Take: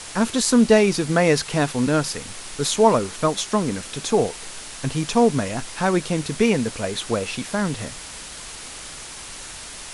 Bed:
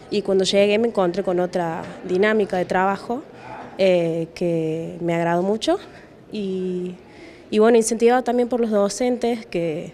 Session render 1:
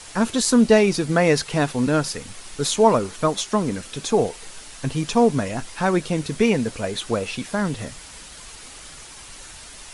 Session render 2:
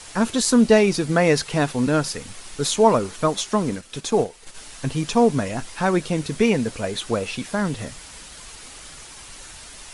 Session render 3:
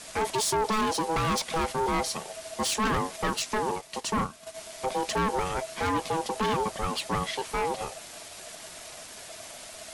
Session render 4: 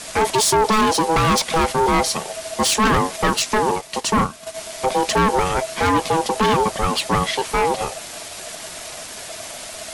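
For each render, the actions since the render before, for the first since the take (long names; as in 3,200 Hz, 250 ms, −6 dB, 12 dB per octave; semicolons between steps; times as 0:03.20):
broadband denoise 6 dB, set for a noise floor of −37 dBFS
0:03.70–0:04.59: transient designer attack −1 dB, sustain −9 dB
hard clipping −21 dBFS, distortion −5 dB; ring modulation 650 Hz
level +10 dB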